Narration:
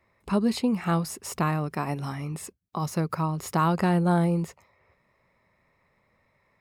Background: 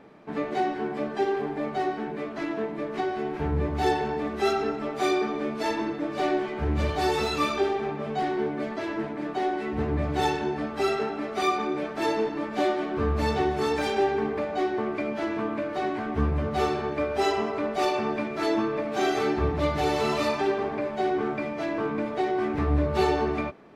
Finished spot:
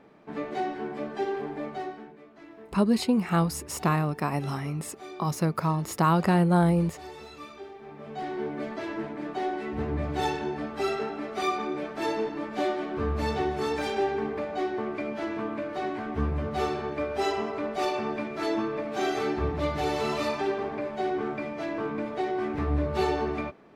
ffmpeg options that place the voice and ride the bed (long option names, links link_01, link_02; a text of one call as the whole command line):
ffmpeg -i stem1.wav -i stem2.wav -filter_complex "[0:a]adelay=2450,volume=1dB[link_01];[1:a]volume=11dB,afade=type=out:start_time=1.59:duration=0.58:silence=0.199526,afade=type=in:start_time=7.79:duration=0.8:silence=0.177828[link_02];[link_01][link_02]amix=inputs=2:normalize=0" out.wav